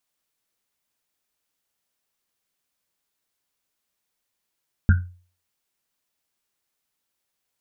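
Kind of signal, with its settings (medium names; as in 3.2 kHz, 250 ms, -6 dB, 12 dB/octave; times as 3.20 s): Risset drum, pitch 89 Hz, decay 0.41 s, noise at 1.5 kHz, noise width 180 Hz, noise 15%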